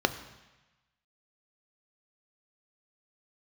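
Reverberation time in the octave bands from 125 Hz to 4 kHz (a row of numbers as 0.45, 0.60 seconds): 1.2, 1.0, 1.0, 1.2, 1.2, 1.2 seconds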